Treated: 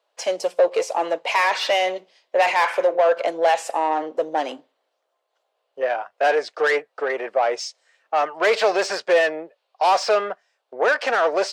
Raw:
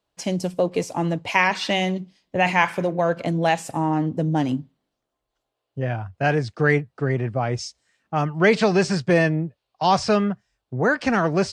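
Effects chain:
mid-hump overdrive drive 22 dB, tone 4,000 Hz, clips at −2.5 dBFS
four-pole ladder high-pass 430 Hz, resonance 45%

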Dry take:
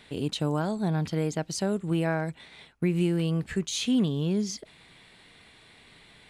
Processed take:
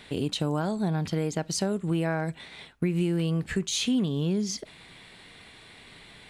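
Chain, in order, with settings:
downward compressor 2.5 to 1, threshold −30 dBFS, peak gain reduction 7 dB
on a send: convolution reverb, pre-delay 3 ms, DRR 19.5 dB
on the sum: level +4.5 dB

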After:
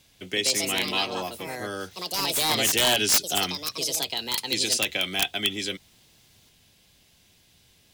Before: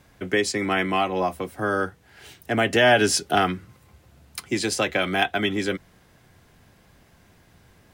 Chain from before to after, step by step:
high shelf with overshoot 2,200 Hz +12 dB, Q 1.5
wrap-around overflow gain 3 dB
delay with pitch and tempo change per echo 195 ms, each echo +4 semitones, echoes 2
level −9 dB

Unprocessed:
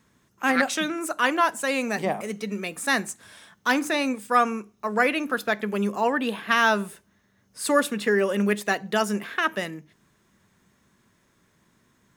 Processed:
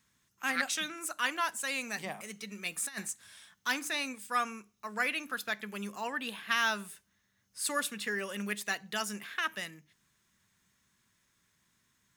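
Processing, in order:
guitar amp tone stack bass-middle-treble 5-5-5
0:02.65–0:03.08: compressor whose output falls as the input rises −39 dBFS, ratio −0.5
level +3 dB

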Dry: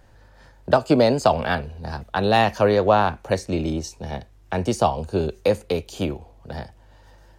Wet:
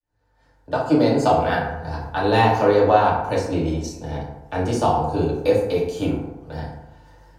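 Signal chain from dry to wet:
fade in at the beginning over 1.36 s
feedback delay network reverb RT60 0.96 s, low-frequency decay 0.95×, high-frequency decay 0.45×, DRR −6 dB
level −6 dB

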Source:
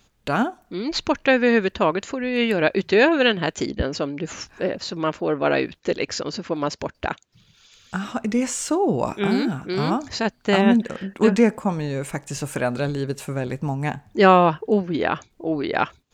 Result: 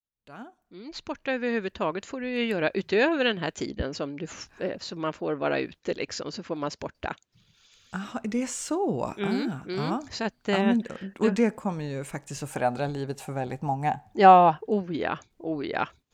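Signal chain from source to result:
fade in at the beginning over 2.30 s
0:12.50–0:14.60: parametric band 780 Hz +14.5 dB 0.33 octaves
level −6.5 dB

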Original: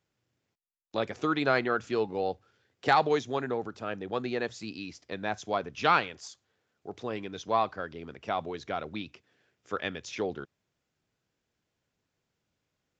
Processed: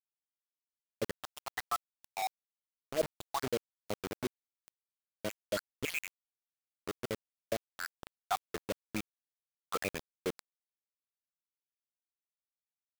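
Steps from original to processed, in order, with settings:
time-frequency cells dropped at random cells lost 80%
0:02.10–0:03.03: linear-phase brick-wall band-pass 180–2,200 Hz
bit reduction 6 bits

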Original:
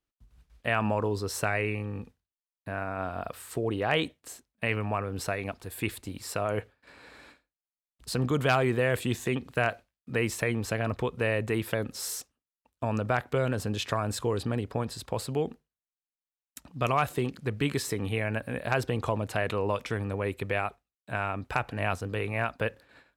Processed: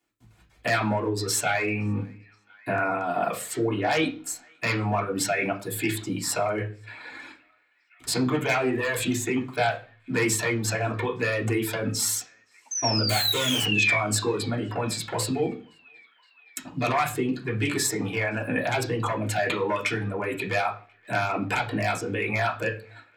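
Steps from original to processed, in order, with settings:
wavefolder on the positive side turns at −19 dBFS
in parallel at 0 dB: compressor whose output falls as the input rises −35 dBFS, ratio −0.5
0:12.71–0:13.98: on the sum: sound drawn into the spectrogram fall 2,200–6,300 Hz −28 dBFS
0:13.09–0:13.66: comparator with hysteresis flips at −35 dBFS
feedback echo with a band-pass in the loop 518 ms, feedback 70%, band-pass 2,000 Hz, level −19 dB
reverb reduction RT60 1.9 s
convolution reverb RT60 0.40 s, pre-delay 3 ms, DRR −5.5 dB
level −1.5 dB

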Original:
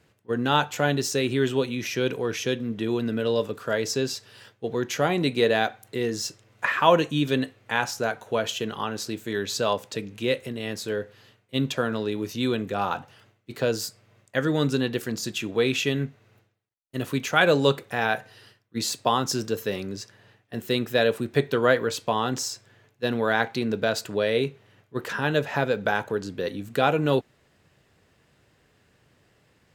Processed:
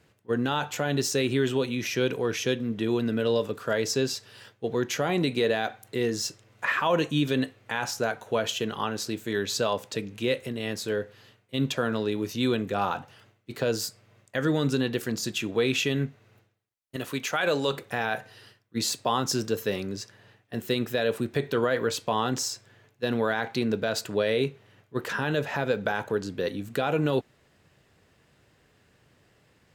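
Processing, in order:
0:16.96–0:17.73: low-shelf EQ 320 Hz −9.5 dB
brickwall limiter −14.5 dBFS, peak gain reduction 9.5 dB

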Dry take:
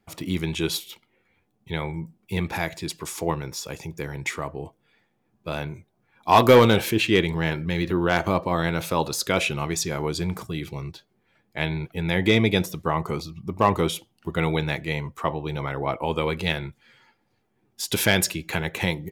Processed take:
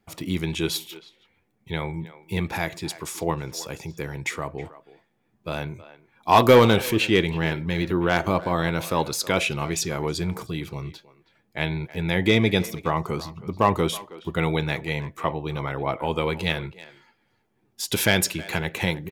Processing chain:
far-end echo of a speakerphone 320 ms, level −16 dB

